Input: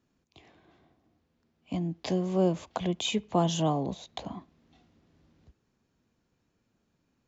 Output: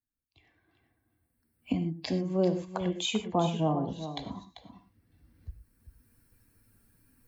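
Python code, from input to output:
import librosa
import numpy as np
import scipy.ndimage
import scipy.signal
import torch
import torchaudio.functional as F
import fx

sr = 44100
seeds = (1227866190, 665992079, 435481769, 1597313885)

y = fx.bin_expand(x, sr, power=1.5)
y = fx.recorder_agc(y, sr, target_db=-22.5, rise_db_per_s=13.0, max_gain_db=30)
y = fx.lowpass(y, sr, hz=fx.line((3.33, 1500.0), (3.82, 2600.0)), slope=12, at=(3.33, 3.82), fade=0.02)
y = y + 10.0 ** (-11.0 / 20.0) * np.pad(y, (int(391 * sr / 1000.0), 0))[:len(y)]
y = fx.rev_gated(y, sr, seeds[0], gate_ms=140, shape='flat', drr_db=8.5)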